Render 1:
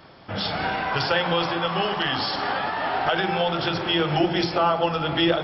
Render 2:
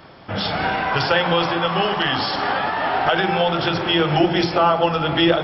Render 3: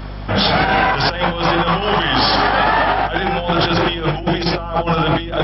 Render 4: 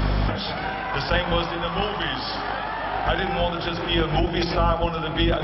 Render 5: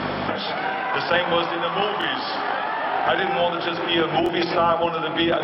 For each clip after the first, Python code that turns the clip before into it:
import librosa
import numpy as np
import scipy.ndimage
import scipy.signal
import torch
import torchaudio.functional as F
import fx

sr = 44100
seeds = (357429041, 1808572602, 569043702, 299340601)

y1 = fx.peak_eq(x, sr, hz=4500.0, db=-3.0, octaves=0.65)
y1 = y1 * librosa.db_to_amplitude(4.5)
y2 = fx.over_compress(y1, sr, threshold_db=-22.0, ratio=-0.5)
y2 = fx.add_hum(y2, sr, base_hz=50, snr_db=12)
y2 = y2 * librosa.db_to_amplitude(5.5)
y3 = fx.over_compress(y2, sr, threshold_db=-25.0, ratio=-1.0)
y4 = fx.bandpass_edges(y3, sr, low_hz=260.0, high_hz=3800.0)
y4 = fx.buffer_glitch(y4, sr, at_s=(1.99, 4.24), block=1024, repeats=1)
y4 = y4 * librosa.db_to_amplitude(3.5)